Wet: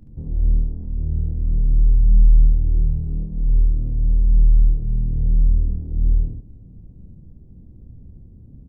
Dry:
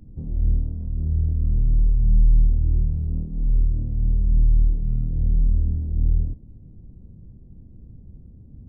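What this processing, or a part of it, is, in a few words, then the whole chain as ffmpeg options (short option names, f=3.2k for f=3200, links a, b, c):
slapback doubling: -filter_complex "[0:a]asplit=3[a][b][c];[b]adelay=28,volume=-8.5dB[d];[c]adelay=72,volume=-5dB[e];[a][d][e]amix=inputs=3:normalize=0"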